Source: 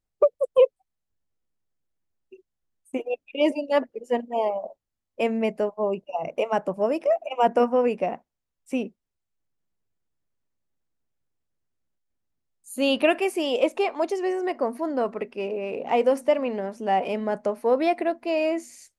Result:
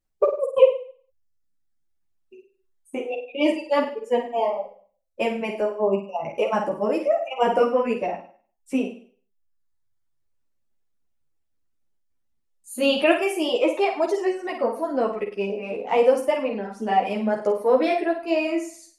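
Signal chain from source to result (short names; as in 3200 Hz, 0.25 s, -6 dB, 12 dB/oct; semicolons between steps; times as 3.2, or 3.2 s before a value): reverb removal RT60 1.1 s; flutter echo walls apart 8.7 m, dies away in 0.46 s; ensemble effect; gain +5 dB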